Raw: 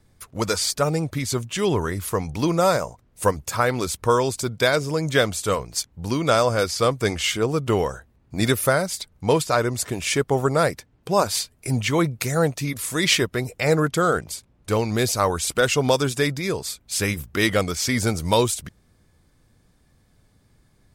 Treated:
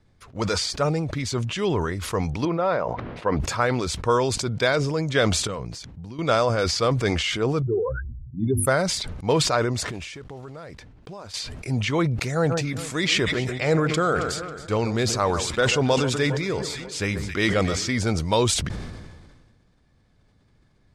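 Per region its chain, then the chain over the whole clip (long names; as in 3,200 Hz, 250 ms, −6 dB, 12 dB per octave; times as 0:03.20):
0:02.45–0:03.40: high-pass filter 300 Hz 6 dB per octave + high-frequency loss of the air 350 metres
0:05.47–0:06.19: downward compressor 5 to 1, threshold −37 dBFS + parametric band 150 Hz +6.5 dB 1.8 octaves
0:07.62–0:08.67: expanding power law on the bin magnitudes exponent 3.6 + mains-hum notches 50/100/150/200/250/300/350 Hz
0:09.87–0:11.34: one scale factor per block 5 bits + low-shelf EQ 61 Hz +8.5 dB + downward compressor 10 to 1, threshold −33 dBFS
0:12.31–0:17.92: parametric band 7,300 Hz +3.5 dB 0.28 octaves + delay that swaps between a low-pass and a high-pass 136 ms, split 1,700 Hz, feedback 69%, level −13.5 dB
whole clip: low-pass filter 5,100 Hz 12 dB per octave; level that may fall only so fast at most 35 dB per second; level −2.5 dB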